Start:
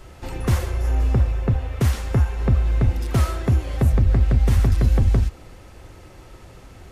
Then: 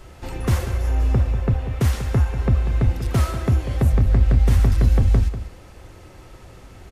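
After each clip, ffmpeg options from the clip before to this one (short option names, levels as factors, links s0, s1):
-filter_complex "[0:a]asplit=2[s0][s1];[s1]adelay=192.4,volume=0.282,highshelf=f=4000:g=-4.33[s2];[s0][s2]amix=inputs=2:normalize=0"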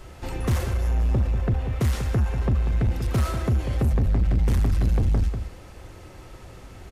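-af "asoftclip=type=tanh:threshold=0.15"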